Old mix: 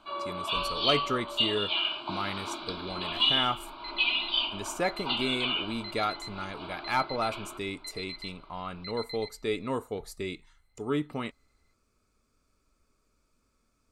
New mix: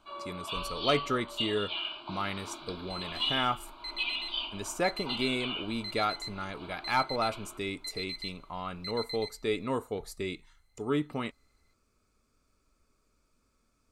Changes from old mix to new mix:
first sound -6.5 dB; second sound: remove low-pass 4.2 kHz 24 dB/octave

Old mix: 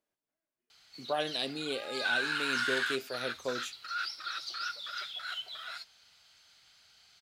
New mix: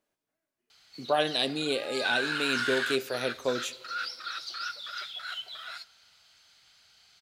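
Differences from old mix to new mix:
speech +4.5 dB; reverb: on, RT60 2.1 s

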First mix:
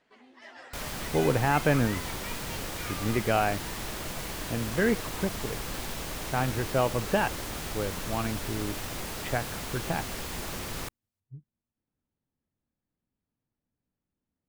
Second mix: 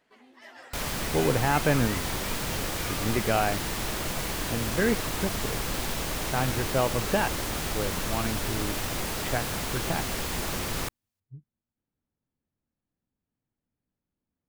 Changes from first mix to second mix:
first sound: remove low-pass 7.4 kHz 12 dB/octave; second sound +5.0 dB

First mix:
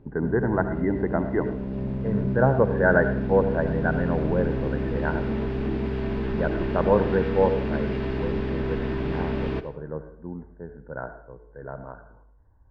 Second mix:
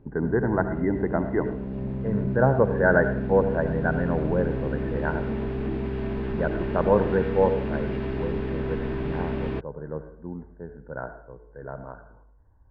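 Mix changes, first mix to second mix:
background: send off; master: add peaking EQ 5.6 kHz -6.5 dB 1 oct

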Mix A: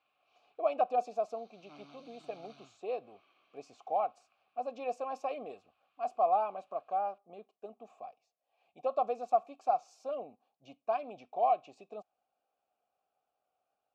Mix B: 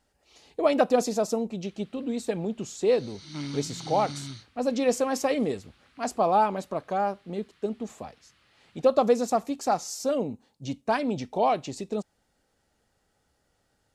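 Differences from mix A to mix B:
background: entry +1.65 s; master: remove vowel filter a

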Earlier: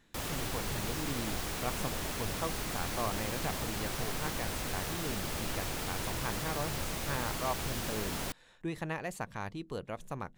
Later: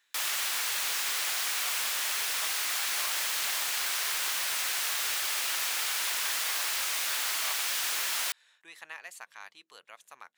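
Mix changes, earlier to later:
background +10.0 dB; master: add high-pass 1.5 kHz 12 dB/octave

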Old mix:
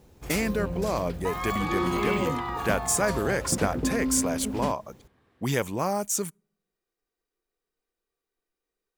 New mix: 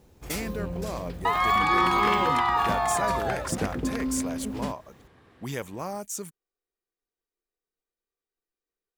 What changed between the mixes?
speech -6.5 dB; second sound +9.5 dB; reverb: off

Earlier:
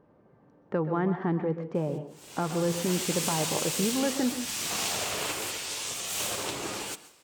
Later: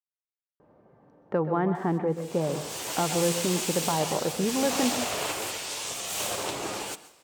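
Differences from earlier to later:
speech: entry +0.60 s; master: add peaking EQ 700 Hz +5 dB 1.2 oct

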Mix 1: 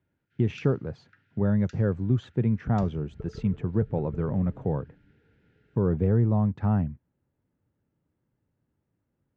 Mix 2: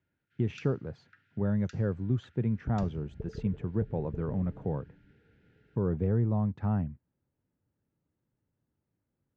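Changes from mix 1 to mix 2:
speech -5.0 dB; second sound: add steep low-pass 1 kHz 72 dB/octave

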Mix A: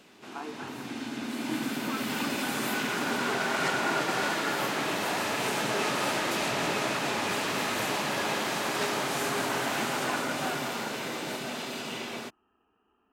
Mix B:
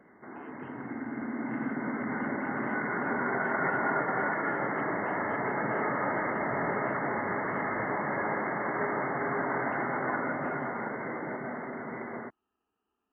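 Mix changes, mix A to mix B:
speech -11.5 dB; background: add brick-wall FIR low-pass 2.2 kHz

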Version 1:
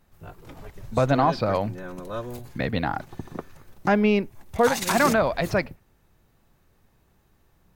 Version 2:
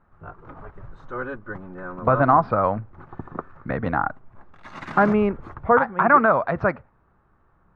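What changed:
speech: entry +1.10 s; master: add resonant low-pass 1.3 kHz, resonance Q 3.1

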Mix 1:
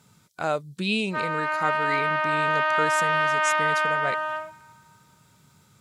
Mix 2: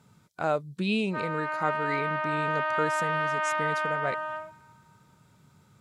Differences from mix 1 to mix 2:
background -3.5 dB; master: add treble shelf 2.4 kHz -9 dB

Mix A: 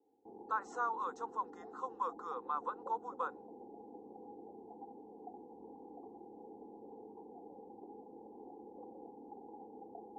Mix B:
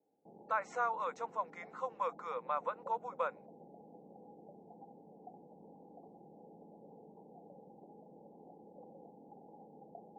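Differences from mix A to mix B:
background -7.5 dB; master: remove static phaser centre 610 Hz, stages 6

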